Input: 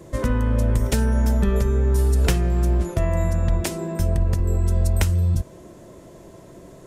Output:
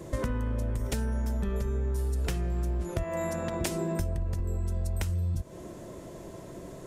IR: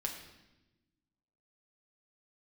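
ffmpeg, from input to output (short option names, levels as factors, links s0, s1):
-filter_complex "[0:a]acontrast=81,asettb=1/sr,asplit=3[s0][s1][s2];[s0]atrim=end=3.034[s3];[s1]atrim=start=3.03:end=3.61,asetpts=PTS-STARTPTS,afade=t=in:d=0.004:c=qsin,afade=t=out:st=0.576:d=0.004:c=qsin,highpass=240[s4];[s2]atrim=start=3.606[s5];[s3][s4]acrossfade=d=0.004:c1=hsin:c2=qsin[s6];[s6][s5]acrossfade=d=0.004:c1=qsin:c2=hsin,acompressor=threshold=0.1:ratio=10,volume=0.473"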